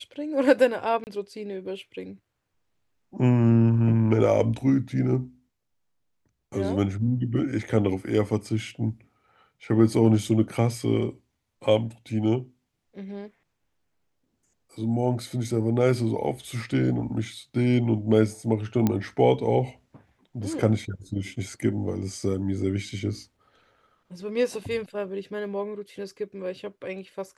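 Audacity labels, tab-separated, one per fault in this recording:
1.040000	1.070000	gap 29 ms
18.870000	18.870000	pop -10 dBFS

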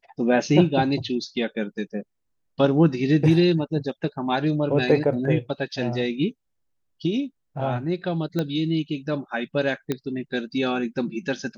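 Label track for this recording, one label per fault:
8.390000	8.390000	pop -13 dBFS
9.920000	9.920000	pop -12 dBFS

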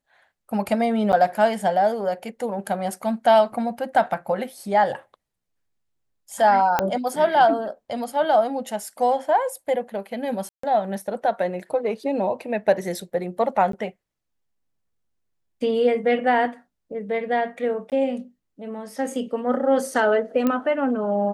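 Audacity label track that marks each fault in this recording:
1.120000	1.130000	gap 9 ms
6.790000	6.790000	pop -6 dBFS
10.490000	10.630000	gap 0.144 s
13.720000	13.730000	gap 13 ms
17.900000	17.920000	gap 18 ms
20.470000	20.470000	pop -10 dBFS

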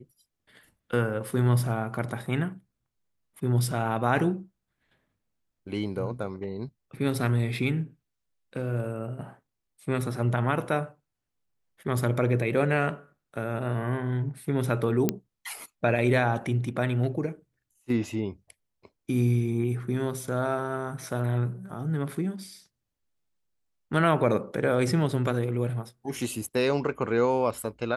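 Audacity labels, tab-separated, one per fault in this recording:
15.090000	15.090000	pop -9 dBFS

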